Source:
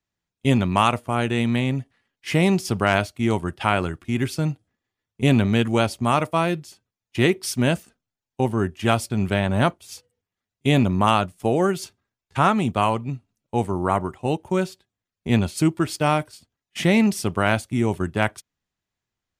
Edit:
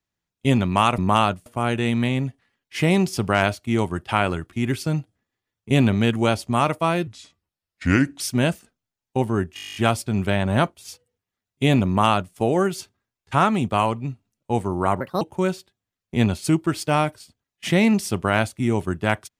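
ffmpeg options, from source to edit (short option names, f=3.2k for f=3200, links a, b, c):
-filter_complex "[0:a]asplit=17[a][b][c][d][e][f][g][h][i][j][k][l][m][n][o][p][q];[a]atrim=end=0.982[r];[b]atrim=start=10.898:end=11.382[s];[c]atrim=start=0.978:end=6.594[t];[d]atrim=start=6.59:end=7.44,asetpts=PTS-STARTPTS,asetrate=33075,aresample=44100[u];[e]atrim=start=7.436:end=8.812[v];[f]atrim=start=8.788:end=8.812[w];[g]atrim=start=8.788:end=8.812[x];[h]atrim=start=8.788:end=8.812[y];[i]atrim=start=8.788:end=8.812[z];[j]atrim=start=8.788:end=8.812[aa];[k]atrim=start=8.788:end=8.812[ab];[l]atrim=start=8.788:end=8.812[ac];[m]atrim=start=8.788:end=8.812[ad];[n]atrim=start=8.788:end=8.812[ae];[o]atrim=start=8.788:end=14.044[af];[p]atrim=start=14.04:end=14.34,asetpts=PTS-STARTPTS,asetrate=63504,aresample=44100[ag];[q]atrim=start=14.336[ah];[r][s]acrossfade=d=0.004:c1=hsin:c2=hsin[ai];[ai][t]acrossfade=d=0.004:c1=hsin:c2=hsin[aj];[aj][u]acrossfade=d=0.004:c1=hsin:c2=hsin[ak];[ak][v]acrossfade=d=0.004:c1=hsin:c2=hsin[al];[al][w]acrossfade=d=0.004:c1=hsin:c2=hsin[am];[am][x]acrossfade=d=0.004:c1=hsin:c2=hsin[an];[an][y]acrossfade=d=0.004:c1=hsin:c2=hsin[ao];[ao][z]acrossfade=d=0.004:c1=hsin:c2=hsin[ap];[ap][aa]acrossfade=d=0.004:c1=hsin:c2=hsin[aq];[aq][ab]acrossfade=d=0.004:c1=hsin:c2=hsin[ar];[ar][ac]acrossfade=d=0.004:c1=hsin:c2=hsin[as];[as][ad]acrossfade=d=0.004:c1=hsin:c2=hsin[at];[at][ae]acrossfade=d=0.004:c1=hsin:c2=hsin[au];[au][af]acrossfade=d=0.004:c1=hsin:c2=hsin[av];[av][ag]acrossfade=d=0.004:c1=hsin:c2=hsin[aw];[aw][ah]acrossfade=d=0.004:c1=hsin:c2=hsin"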